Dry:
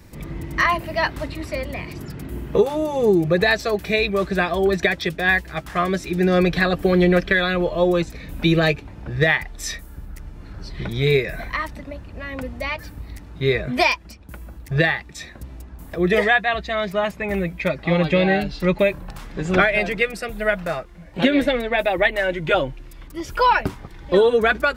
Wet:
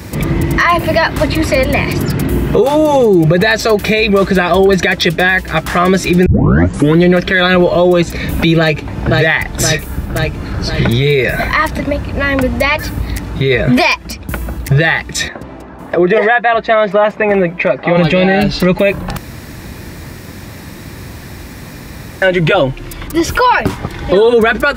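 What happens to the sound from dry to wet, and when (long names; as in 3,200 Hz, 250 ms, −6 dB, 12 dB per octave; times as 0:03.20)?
0:06.26: tape start 0.76 s
0:08.59–0:09.20: delay throw 520 ms, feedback 50%, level −5.5 dB
0:15.28–0:17.97: resonant band-pass 740 Hz, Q 0.61
0:19.17–0:22.22: fill with room tone
whole clip: high-pass filter 64 Hz; downward compressor 1.5 to 1, threshold −31 dBFS; boost into a limiter +20.5 dB; level −1 dB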